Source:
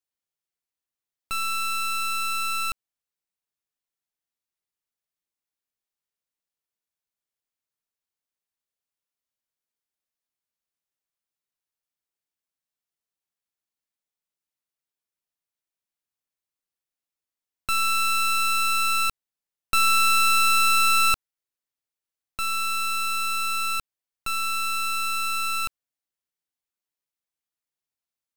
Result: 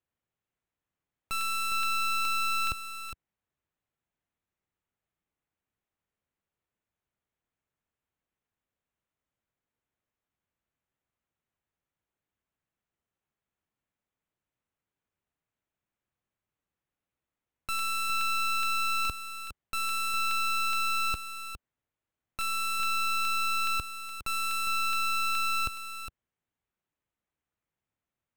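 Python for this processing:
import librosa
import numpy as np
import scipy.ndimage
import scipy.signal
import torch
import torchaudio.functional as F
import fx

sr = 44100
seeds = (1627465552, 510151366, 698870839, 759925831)

p1 = fx.wiener(x, sr, points=9)
p2 = fx.peak_eq(p1, sr, hz=80.0, db=8.5, octaves=3.0)
p3 = fx.over_compress(p2, sr, threshold_db=-26.0, ratio=-1.0)
p4 = p2 + (p3 * 10.0 ** (-3.0 / 20.0))
p5 = 10.0 ** (-30.0 / 20.0) * np.tanh(p4 / 10.0 ** (-30.0 / 20.0))
p6 = p5 + 10.0 ** (-9.0 / 20.0) * np.pad(p5, (int(409 * sr / 1000.0), 0))[:len(p5)]
y = fx.buffer_crackle(p6, sr, first_s=0.99, period_s=0.42, block=64, kind='repeat')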